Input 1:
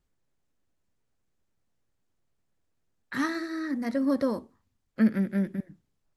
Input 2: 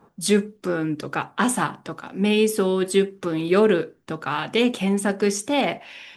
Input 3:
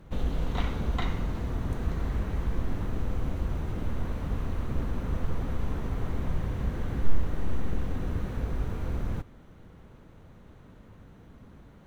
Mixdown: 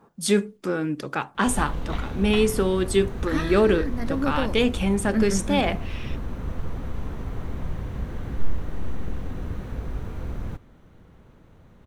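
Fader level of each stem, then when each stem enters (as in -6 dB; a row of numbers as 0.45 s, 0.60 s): -1.0 dB, -1.5 dB, -0.5 dB; 0.15 s, 0.00 s, 1.35 s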